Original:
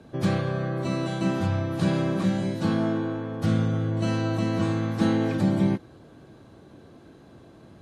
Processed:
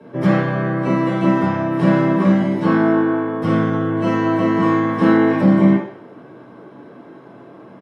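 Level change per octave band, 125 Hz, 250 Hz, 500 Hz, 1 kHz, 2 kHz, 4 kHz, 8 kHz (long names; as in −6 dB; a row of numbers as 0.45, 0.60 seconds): +4.5 dB, +10.0 dB, +10.0 dB, +12.5 dB, +11.0 dB, +1.0 dB, can't be measured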